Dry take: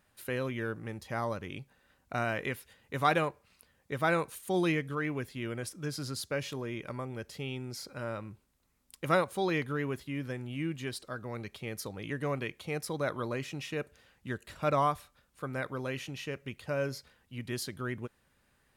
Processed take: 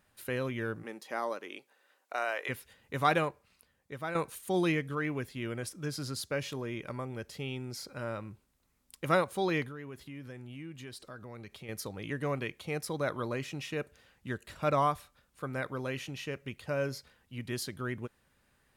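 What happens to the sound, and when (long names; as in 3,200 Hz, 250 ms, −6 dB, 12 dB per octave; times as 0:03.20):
0:00.82–0:02.48: high-pass filter 230 Hz → 480 Hz 24 dB per octave
0:03.18–0:04.15: fade out, to −10.5 dB
0:09.68–0:11.69: downward compressor 2.5 to 1, threshold −45 dBFS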